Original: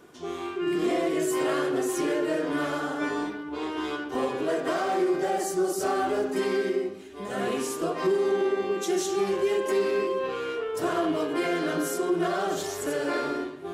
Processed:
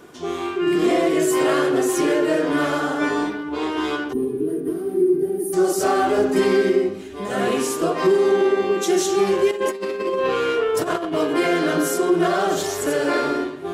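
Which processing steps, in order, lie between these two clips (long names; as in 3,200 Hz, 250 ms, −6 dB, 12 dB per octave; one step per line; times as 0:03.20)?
0:04.13–0:05.53: gain on a spectral selection 460–8,700 Hz −25 dB
0:06.18–0:07.17: low-shelf EQ 190 Hz +7.5 dB
0:09.51–0:11.16: compressor whose output falls as the input rises −29 dBFS, ratio −0.5
level +7.5 dB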